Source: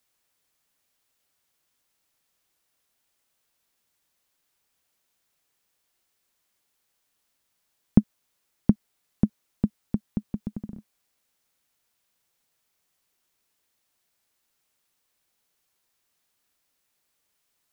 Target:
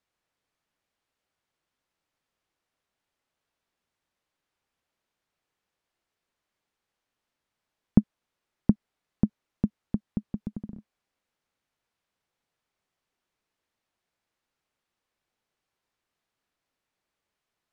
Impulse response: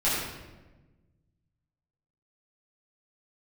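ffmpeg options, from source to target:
-af "aemphasis=mode=reproduction:type=75fm,volume=-2.5dB"

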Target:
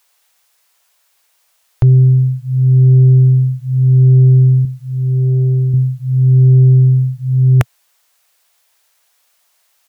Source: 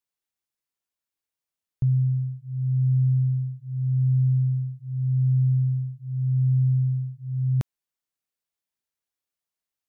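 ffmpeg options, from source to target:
ffmpeg -i in.wav -filter_complex "[0:a]firequalizer=gain_entry='entry(120,0);entry(190,-19);entry(450,6);entry(660,12)':delay=0.05:min_phase=1,asplit=2[link_01][link_02];[link_02]aeval=exprs='0.355*sin(PI/2*3.55*val(0)/0.355)':channel_layout=same,volume=-8.5dB[link_03];[link_01][link_03]amix=inputs=2:normalize=0,asettb=1/sr,asplit=3[link_04][link_05][link_06];[link_04]atrim=end=4.654[link_07];[link_05]atrim=start=4.65:end=5.74,asetpts=PTS-STARTPTS,afade=type=in:duration=0.004:curve=qsin,afade=type=out:start_time=1.086:duration=0.004:curve=qsin,lowshelf=frequency=140:gain=-10[link_08];[link_06]atrim=start=5.736[link_09];[link_07][link_08]acrossfade=duration=0.004:curve1=hsin:curve2=qsin[link_10];[link_10][link_09]acrossfade=duration=0.004:curve1=qsin:curve2=hsin,volume=8dB" out.wav

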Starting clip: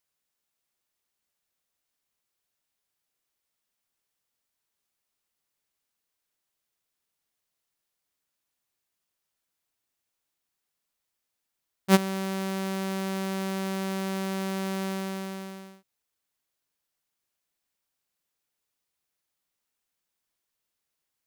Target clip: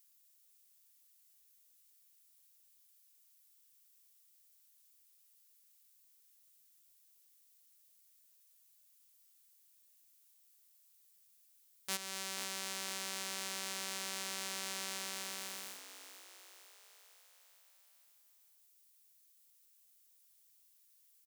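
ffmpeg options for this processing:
ffmpeg -i in.wav -filter_complex "[0:a]acrossover=split=8900[link_01][link_02];[link_02]acompressor=threshold=-54dB:ratio=4:attack=1:release=60[link_03];[link_01][link_03]amix=inputs=2:normalize=0,asoftclip=type=tanh:threshold=-15dB,acompressor=threshold=-40dB:ratio=2,aderivative,asplit=2[link_04][link_05];[link_05]asplit=6[link_06][link_07][link_08][link_09][link_10][link_11];[link_06]adelay=484,afreqshift=76,volume=-11dB[link_12];[link_07]adelay=968,afreqshift=152,volume=-15.9dB[link_13];[link_08]adelay=1452,afreqshift=228,volume=-20.8dB[link_14];[link_09]adelay=1936,afreqshift=304,volume=-25.6dB[link_15];[link_10]adelay=2420,afreqshift=380,volume=-30.5dB[link_16];[link_11]adelay=2904,afreqshift=456,volume=-35.4dB[link_17];[link_12][link_13][link_14][link_15][link_16][link_17]amix=inputs=6:normalize=0[link_18];[link_04][link_18]amix=inputs=2:normalize=0,volume=11.5dB" out.wav

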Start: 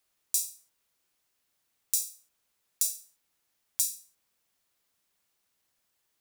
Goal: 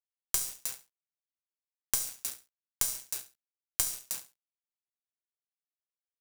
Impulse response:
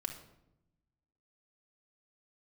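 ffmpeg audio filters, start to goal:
-filter_complex "[0:a]aecho=1:1:312:0.178,asplit=2[link_01][link_02];[1:a]atrim=start_sample=2205[link_03];[link_02][link_03]afir=irnorm=-1:irlink=0,volume=3.5dB[link_04];[link_01][link_04]amix=inputs=2:normalize=0,tremolo=f=130:d=0.333,aeval=exprs='val(0)*gte(abs(val(0)),0.02)':channel_layout=same,aeval=exprs='(tanh(2.51*val(0)+0.8)-tanh(0.8))/2.51':channel_layout=same,asplit=2[link_05][link_06];[link_06]aecho=0:1:69|138:0.188|0.0358[link_07];[link_05][link_07]amix=inputs=2:normalize=0,acompressor=threshold=-33dB:ratio=6,volume=7.5dB"

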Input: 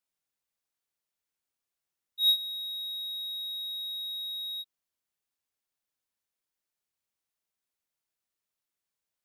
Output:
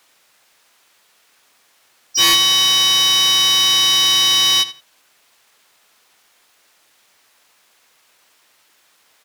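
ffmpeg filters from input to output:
ffmpeg -i in.wav -filter_complex "[0:a]apsyclip=21dB,asplit=4[link_01][link_02][link_03][link_04];[link_02]asetrate=35002,aresample=44100,atempo=1.25992,volume=-1dB[link_05];[link_03]asetrate=58866,aresample=44100,atempo=0.749154,volume=-9dB[link_06];[link_04]asetrate=66075,aresample=44100,atempo=0.66742,volume=-4dB[link_07];[link_01][link_05][link_06][link_07]amix=inputs=4:normalize=0,acontrast=70,asplit=2[link_08][link_09];[link_09]highpass=frequency=720:poles=1,volume=18dB,asoftclip=type=tanh:threshold=0dB[link_10];[link_08][link_10]amix=inputs=2:normalize=0,lowpass=frequency=3600:poles=1,volume=-6dB,asplit=2[link_11][link_12];[link_12]adelay=83,lowpass=frequency=4700:poles=1,volume=-14dB,asplit=2[link_13][link_14];[link_14]adelay=83,lowpass=frequency=4700:poles=1,volume=0.21[link_15];[link_11][link_13][link_15]amix=inputs=3:normalize=0,volume=-6.5dB" out.wav

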